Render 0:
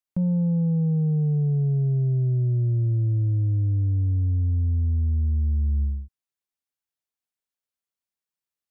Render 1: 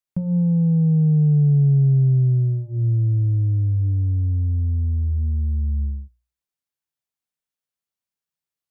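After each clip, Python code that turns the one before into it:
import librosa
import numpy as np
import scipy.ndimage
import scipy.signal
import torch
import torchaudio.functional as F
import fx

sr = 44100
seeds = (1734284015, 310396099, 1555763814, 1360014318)

y = fx.peak_eq(x, sr, hz=140.0, db=7.0, octaves=0.76)
y = fx.hum_notches(y, sr, base_hz=60, count=6)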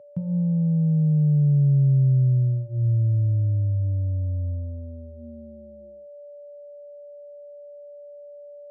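y = x + 10.0 ** (-38.0 / 20.0) * np.sin(2.0 * np.pi * 580.0 * np.arange(len(x)) / sr)
y = fx.filter_sweep_highpass(y, sr, from_hz=110.0, to_hz=560.0, start_s=4.5, end_s=6.31, q=1.9)
y = y * 10.0 ** (-7.5 / 20.0)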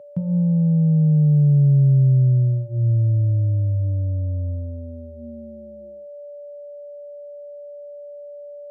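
y = fx.low_shelf(x, sr, hz=67.0, db=-10.0)
y = y * 10.0 ** (5.5 / 20.0)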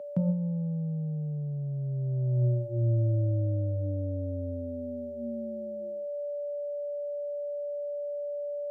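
y = scipy.signal.sosfilt(scipy.signal.butter(2, 210.0, 'highpass', fs=sr, output='sos'), x)
y = fx.over_compress(y, sr, threshold_db=-26.0, ratio=-0.5)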